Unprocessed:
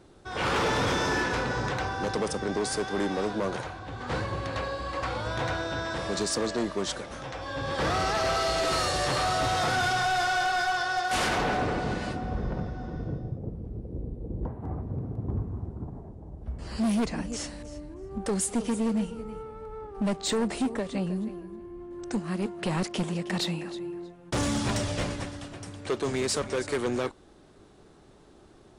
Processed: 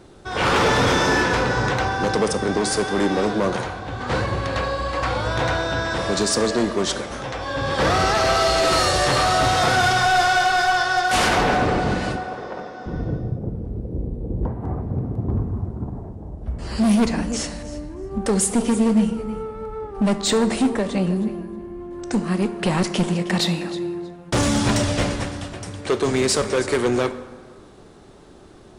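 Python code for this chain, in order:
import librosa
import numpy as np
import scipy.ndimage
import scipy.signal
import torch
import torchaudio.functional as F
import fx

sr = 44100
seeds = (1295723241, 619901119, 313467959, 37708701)

y = fx.highpass(x, sr, hz=460.0, slope=12, at=(12.16, 12.86))
y = fx.rev_plate(y, sr, seeds[0], rt60_s=1.6, hf_ratio=0.55, predelay_ms=0, drr_db=10.5)
y = y * 10.0 ** (8.0 / 20.0)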